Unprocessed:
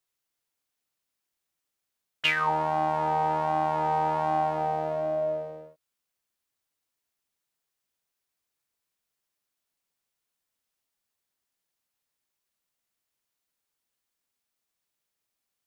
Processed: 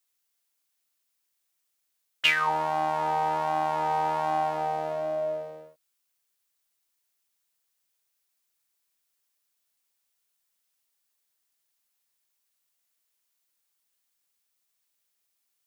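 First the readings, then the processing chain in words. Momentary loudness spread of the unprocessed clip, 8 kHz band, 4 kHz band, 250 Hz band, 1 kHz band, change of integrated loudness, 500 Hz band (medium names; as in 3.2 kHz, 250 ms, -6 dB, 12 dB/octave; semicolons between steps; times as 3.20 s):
5 LU, no reading, +3.0 dB, -4.0 dB, -0.5 dB, 0.0 dB, -1.5 dB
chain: tilt EQ +2 dB/octave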